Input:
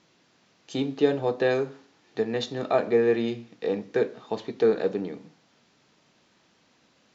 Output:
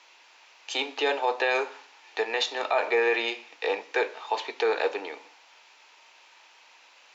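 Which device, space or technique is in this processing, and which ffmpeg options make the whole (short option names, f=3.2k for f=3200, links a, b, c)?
laptop speaker: -af "highpass=f=290:w=0.5412,highpass=f=290:w=1.3066,highpass=740,equalizer=f=900:t=o:w=0.29:g=9,equalizer=f=2.5k:t=o:w=0.54:g=8,alimiter=limit=-21.5dB:level=0:latency=1:release=23,volume=7dB"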